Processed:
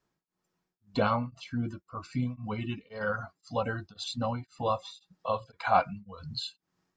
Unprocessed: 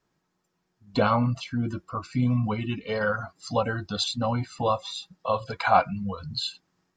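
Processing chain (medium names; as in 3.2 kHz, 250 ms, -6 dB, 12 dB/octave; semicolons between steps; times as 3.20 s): tremolo of two beating tones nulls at 1.9 Hz; trim -4 dB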